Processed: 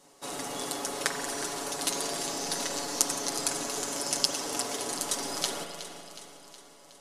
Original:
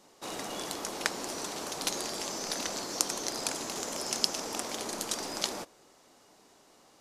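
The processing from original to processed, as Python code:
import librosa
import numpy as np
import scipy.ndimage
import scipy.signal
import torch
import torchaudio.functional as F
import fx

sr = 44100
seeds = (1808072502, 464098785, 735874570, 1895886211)

y = fx.peak_eq(x, sr, hz=9500.0, db=7.0, octaves=0.61)
y = fx.notch(y, sr, hz=2400.0, q=28.0)
y = y + 0.65 * np.pad(y, (int(7.1 * sr / 1000.0), 0))[:len(y)]
y = fx.echo_feedback(y, sr, ms=367, feedback_pct=59, wet_db=-13)
y = fx.rev_spring(y, sr, rt60_s=2.6, pass_ms=(42,), chirp_ms=55, drr_db=4.0)
y = y * librosa.db_to_amplitude(-1.0)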